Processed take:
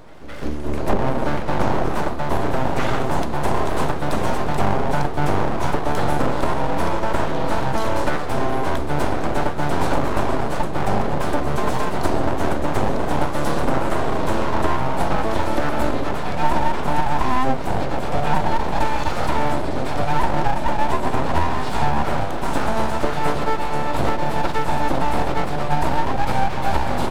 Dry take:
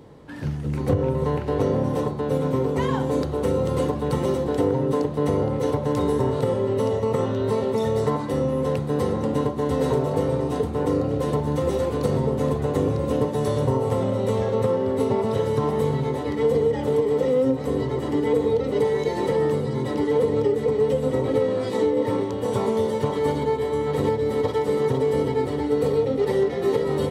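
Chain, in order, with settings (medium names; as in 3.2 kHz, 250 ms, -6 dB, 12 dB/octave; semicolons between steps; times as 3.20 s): full-wave rectifier; pre-echo 213 ms -15 dB; trim +5 dB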